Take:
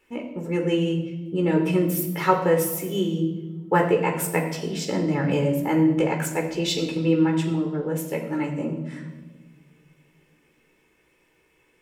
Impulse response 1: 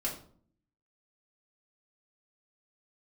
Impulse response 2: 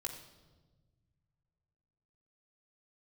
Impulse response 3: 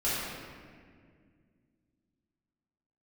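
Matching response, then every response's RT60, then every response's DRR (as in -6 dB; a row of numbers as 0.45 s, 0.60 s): 2; 0.50 s, no single decay rate, 2.0 s; -5.0 dB, 1.0 dB, -11.0 dB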